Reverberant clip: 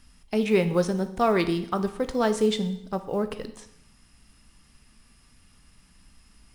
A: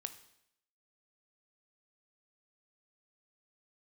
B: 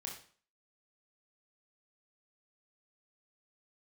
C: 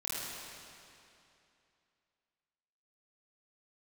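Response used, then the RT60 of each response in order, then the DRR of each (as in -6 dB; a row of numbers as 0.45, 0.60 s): A; 0.75, 0.45, 2.7 s; 9.0, -1.5, -8.0 dB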